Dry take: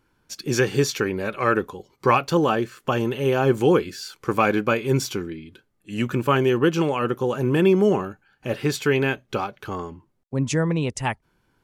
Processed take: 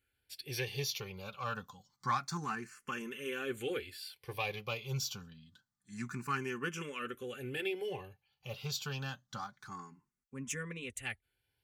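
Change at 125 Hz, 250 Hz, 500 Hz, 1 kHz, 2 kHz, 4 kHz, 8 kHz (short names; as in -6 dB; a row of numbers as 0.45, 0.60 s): -17.5, -21.5, -21.0, -15.5, -13.0, -9.0, -10.0 dB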